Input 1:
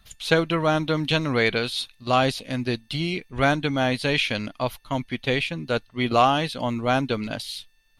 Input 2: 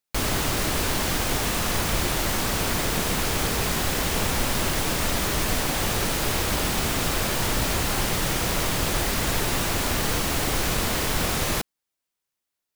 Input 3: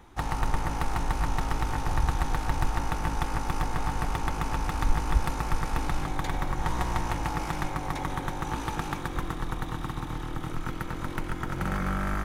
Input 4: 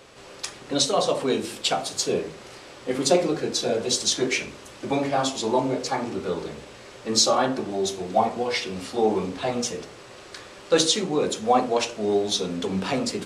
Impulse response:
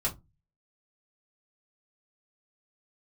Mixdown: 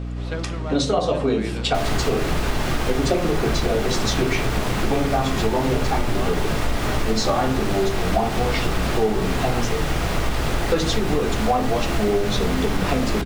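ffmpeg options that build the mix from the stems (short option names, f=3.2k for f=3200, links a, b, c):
-filter_complex "[0:a]volume=-11dB[a];[1:a]adelay=1600,volume=2dB,asplit=2[b][c];[c]volume=-13.5dB[d];[2:a]adelay=1400,volume=-13.5dB[e];[3:a]equalizer=f=100:t=o:w=2.3:g=7,volume=2dB,asplit=2[f][g];[g]volume=-9.5dB[h];[4:a]atrim=start_sample=2205[i];[d][h]amix=inputs=2:normalize=0[j];[j][i]afir=irnorm=-1:irlink=0[k];[a][b][e][f][k]amix=inputs=5:normalize=0,lowpass=f=2.5k:p=1,aeval=exprs='val(0)+0.0447*(sin(2*PI*60*n/s)+sin(2*PI*2*60*n/s)/2+sin(2*PI*3*60*n/s)/3+sin(2*PI*4*60*n/s)/4+sin(2*PI*5*60*n/s)/5)':c=same,acompressor=threshold=-16dB:ratio=6"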